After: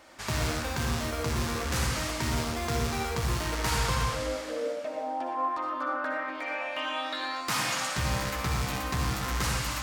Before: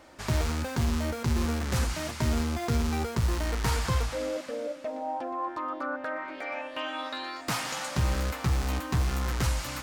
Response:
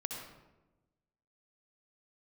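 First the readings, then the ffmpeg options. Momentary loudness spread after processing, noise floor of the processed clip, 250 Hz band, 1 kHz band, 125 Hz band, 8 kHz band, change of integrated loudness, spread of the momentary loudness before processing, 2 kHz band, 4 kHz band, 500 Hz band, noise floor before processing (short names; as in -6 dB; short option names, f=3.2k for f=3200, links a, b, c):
5 LU, -37 dBFS, -2.5 dB, +3.0 dB, -3.0 dB, +3.5 dB, 0.0 dB, 6 LU, +3.5 dB, +3.5 dB, +0.5 dB, -42 dBFS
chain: -filter_complex "[0:a]tiltshelf=f=640:g=-4[a];[1:a]atrim=start_sample=2205,afade=t=out:st=0.37:d=0.01,atrim=end_sample=16758[b];[a][b]afir=irnorm=-1:irlink=0"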